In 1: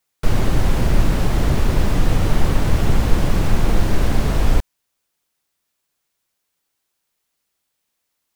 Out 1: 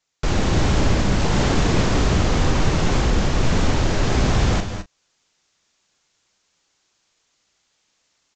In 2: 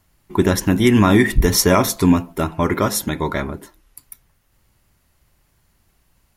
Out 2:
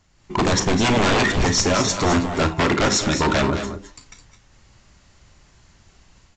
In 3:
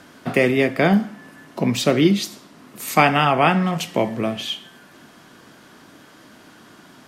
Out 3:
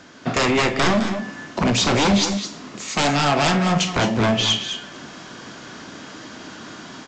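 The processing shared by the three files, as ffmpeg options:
ffmpeg -i in.wav -filter_complex "[0:a]highshelf=frequency=4500:gain=5.5,dynaudnorm=framelen=130:gausssize=3:maxgain=8dB,aresample=16000,aeval=exprs='0.224*(abs(mod(val(0)/0.224+3,4)-2)-1)':channel_layout=same,aresample=44100,asplit=2[link_01][link_02];[link_02]adelay=35,volume=-13dB[link_03];[link_01][link_03]amix=inputs=2:normalize=0,aecho=1:1:50|195|211|221:0.168|0.106|0.282|0.2" out.wav

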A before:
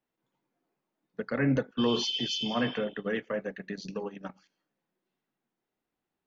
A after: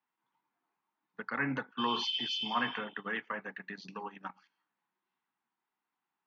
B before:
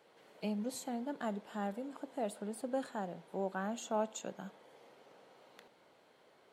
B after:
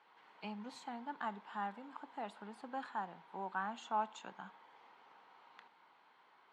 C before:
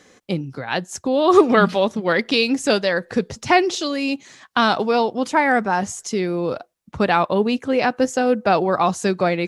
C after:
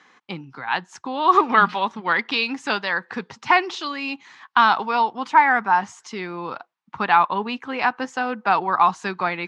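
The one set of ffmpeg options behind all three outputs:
ffmpeg -i in.wav -af "highpass=160,lowpass=3400,lowshelf=frequency=730:width_type=q:width=3:gain=-7.5" out.wav

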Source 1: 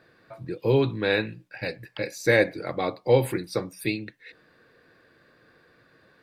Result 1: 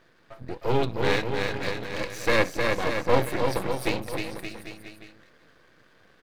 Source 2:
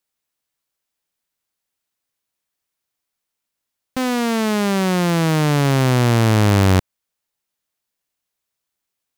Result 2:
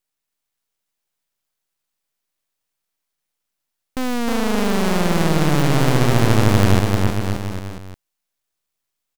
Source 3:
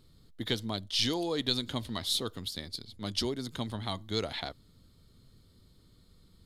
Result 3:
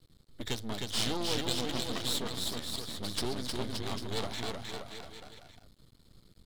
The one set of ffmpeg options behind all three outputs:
ffmpeg -i in.wav -af "aecho=1:1:310|573.5|797.5|987.9|1150:0.631|0.398|0.251|0.158|0.1,aeval=exprs='max(val(0),0)':channel_layout=same,volume=2dB" out.wav

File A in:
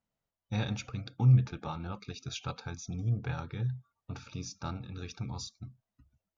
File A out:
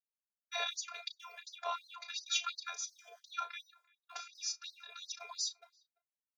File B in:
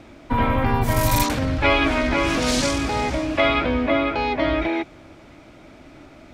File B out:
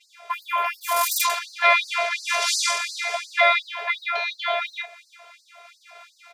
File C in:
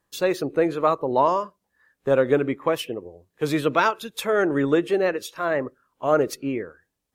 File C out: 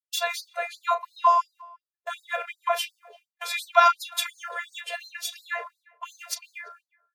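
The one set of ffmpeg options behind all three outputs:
ffmpeg -i in.wav -filter_complex "[0:a]agate=range=-33dB:threshold=-42dB:ratio=3:detection=peak,equalizer=frequency=72:width_type=o:width=1.9:gain=-6,asplit=2[link_01][link_02];[link_02]acompressor=threshold=-35dB:ratio=6,volume=-2dB[link_03];[link_01][link_03]amix=inputs=2:normalize=0,afftfilt=real='hypot(re,im)*cos(PI*b)':imag='0':win_size=512:overlap=0.75,acrossover=split=130|6300[link_04][link_05][link_06];[link_04]acrusher=samples=27:mix=1:aa=0.000001[link_07];[link_05]asplit=2[link_08][link_09];[link_09]adelay=34,volume=-8.5dB[link_10];[link_08][link_10]amix=inputs=2:normalize=0[link_11];[link_07][link_11][link_06]amix=inputs=3:normalize=0,asplit=2[link_12][link_13];[link_13]adelay=340,highpass=300,lowpass=3400,asoftclip=type=hard:threshold=-13dB,volume=-26dB[link_14];[link_12][link_14]amix=inputs=2:normalize=0,afftfilt=real='re*gte(b*sr/1024,420*pow(4100/420,0.5+0.5*sin(2*PI*2.8*pts/sr)))':imag='im*gte(b*sr/1024,420*pow(4100/420,0.5+0.5*sin(2*PI*2.8*pts/sr)))':win_size=1024:overlap=0.75,volume=5dB" out.wav

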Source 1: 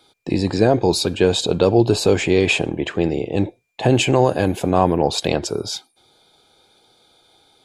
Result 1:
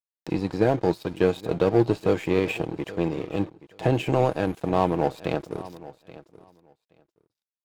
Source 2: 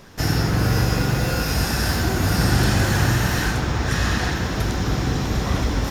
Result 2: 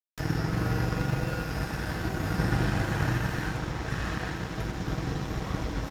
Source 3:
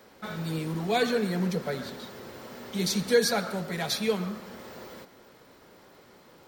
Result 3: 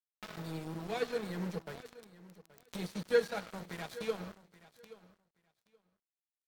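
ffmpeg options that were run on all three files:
ffmpeg -i in.wav -filter_complex "[0:a]acrossover=split=2800[link_01][link_02];[link_02]acompressor=threshold=-39dB:ratio=4:attack=1:release=60[link_03];[link_01][link_03]amix=inputs=2:normalize=0,aecho=1:1:6.3:0.38,aeval=exprs='sgn(val(0))*max(abs(val(0))-0.0224,0)':channel_layout=same,acompressor=mode=upward:threshold=-28dB:ratio=2.5,aeval=exprs='0.841*(cos(1*acos(clip(val(0)/0.841,-1,1)))-cos(1*PI/2))+0.0335*(cos(7*acos(clip(val(0)/0.841,-1,1)))-cos(7*PI/2))':channel_layout=same,asplit=2[link_04][link_05];[link_05]aecho=0:1:826|1652:0.126|0.0201[link_06];[link_04][link_06]amix=inputs=2:normalize=0,volume=-5.5dB" out.wav

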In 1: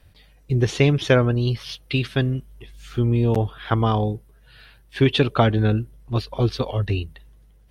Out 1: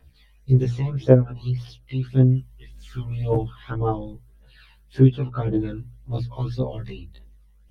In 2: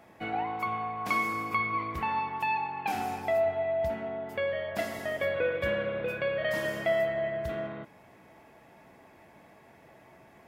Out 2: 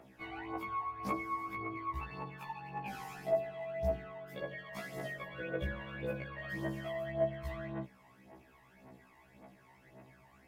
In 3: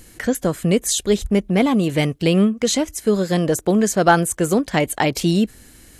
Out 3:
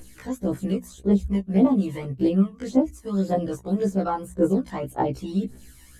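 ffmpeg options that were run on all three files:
ffmpeg -i in.wav -filter_complex "[0:a]aphaser=in_gain=1:out_gain=1:delay=1.1:decay=0.73:speed=1.8:type=triangular,acrossover=split=1100[link_01][link_02];[link_01]bandreject=frequency=60:width_type=h:width=6,bandreject=frequency=120:width_type=h:width=6,bandreject=frequency=180:width_type=h:width=6,bandreject=frequency=240:width_type=h:width=6,bandreject=frequency=300:width_type=h:width=6[link_03];[link_02]acompressor=threshold=-38dB:ratio=10[link_04];[link_03][link_04]amix=inputs=2:normalize=0,afftfilt=real='re*1.73*eq(mod(b,3),0)':imag='im*1.73*eq(mod(b,3),0)':win_size=2048:overlap=0.75,volume=-5.5dB" out.wav

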